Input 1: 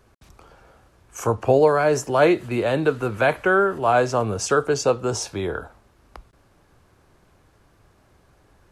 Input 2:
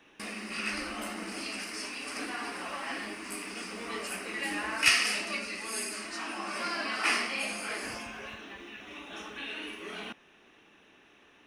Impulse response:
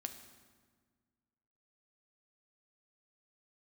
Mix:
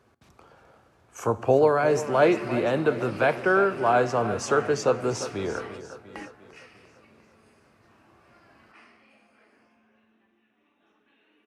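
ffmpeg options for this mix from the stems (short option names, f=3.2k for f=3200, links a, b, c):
-filter_complex "[0:a]volume=-6dB,asplit=4[a][b][c][d];[b]volume=-4dB[e];[c]volume=-10dB[f];[1:a]highshelf=f=2.7k:g=-11.5,adelay=1700,volume=-2.5dB,asplit=2[g][h];[h]volume=-18dB[i];[d]apad=whole_len=580633[j];[g][j]sidechaingate=range=-33dB:threshold=-51dB:ratio=16:detection=peak[k];[2:a]atrim=start_sample=2205[l];[e][i]amix=inputs=2:normalize=0[m];[m][l]afir=irnorm=-1:irlink=0[n];[f]aecho=0:1:348|696|1044|1392|1740|2088|2436|2784:1|0.53|0.281|0.149|0.0789|0.0418|0.0222|0.0117[o];[a][k][n][o]amix=inputs=4:normalize=0,highpass=110,highshelf=f=5.3k:g=-7.5"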